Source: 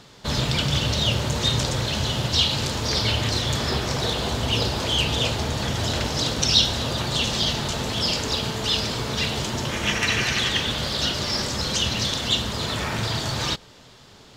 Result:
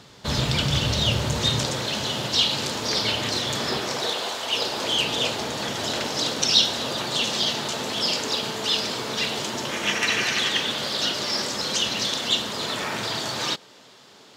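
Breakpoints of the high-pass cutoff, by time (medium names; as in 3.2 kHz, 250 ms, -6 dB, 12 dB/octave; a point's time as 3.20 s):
1.26 s 50 Hz
1.81 s 200 Hz
3.74 s 200 Hz
4.40 s 640 Hz
4.90 s 240 Hz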